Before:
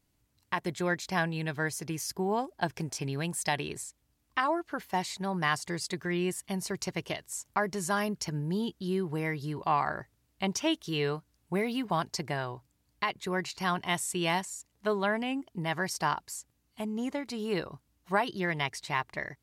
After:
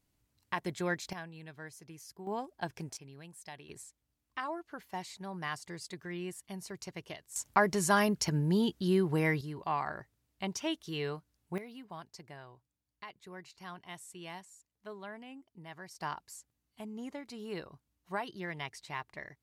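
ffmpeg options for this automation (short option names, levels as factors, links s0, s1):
-af "asetnsamples=n=441:p=0,asendcmd='1.13 volume volume -15.5dB;2.27 volume volume -7dB;2.97 volume volume -18dB;3.69 volume volume -9.5dB;7.36 volume volume 3dB;9.41 volume volume -6dB;11.58 volume volume -16.5dB;16.01 volume volume -9dB',volume=0.668"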